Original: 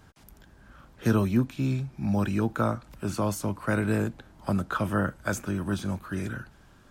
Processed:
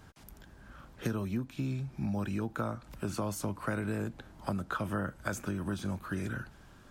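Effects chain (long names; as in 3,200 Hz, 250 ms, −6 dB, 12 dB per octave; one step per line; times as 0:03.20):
downward compressor 5 to 1, threshold −31 dBFS, peak gain reduction 12.5 dB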